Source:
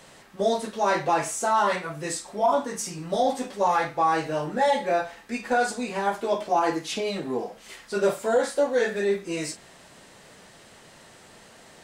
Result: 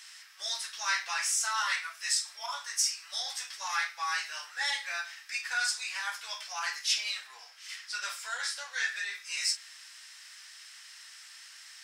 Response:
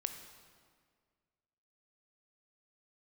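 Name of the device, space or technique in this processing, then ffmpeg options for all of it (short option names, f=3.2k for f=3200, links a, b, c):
headphones lying on a table: -filter_complex "[0:a]asettb=1/sr,asplit=3[a][b][c];[a]atrim=end=7.274[d];[b]atrim=start=7.27:end=9.15,asetpts=PTS-STARTPTS,afade=t=in:d=0.004:c=qsin,afade=t=out:st=1.876:d=0.004:c=qsin,highshelf=f=8.8k:g=-7[e];[c]atrim=start=9.146[f];[d][e]acrossfade=d=0.004:c1=hsin:c2=qsin[g];[g][f]acrossfade=d=0.004:c1=qsin:c2=hsin,highpass=f=1.5k:w=0.5412,highpass=f=1.5k:w=1.3066,equalizer=f=5.3k:t=o:w=0.24:g=11.5,volume=1.5dB"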